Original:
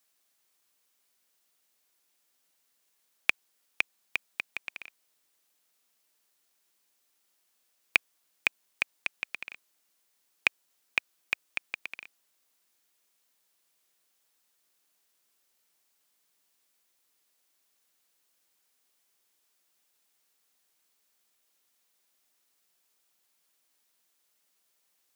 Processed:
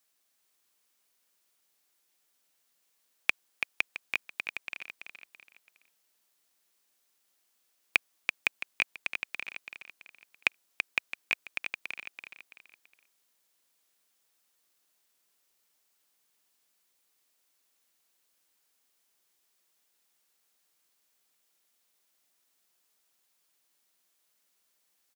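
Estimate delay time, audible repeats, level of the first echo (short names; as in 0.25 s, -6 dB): 0.333 s, 3, -6.0 dB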